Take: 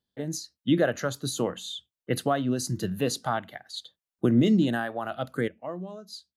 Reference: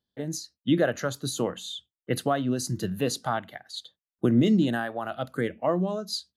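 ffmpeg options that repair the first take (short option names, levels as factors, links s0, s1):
-af "asetnsamples=n=441:p=0,asendcmd='5.48 volume volume 10.5dB',volume=1"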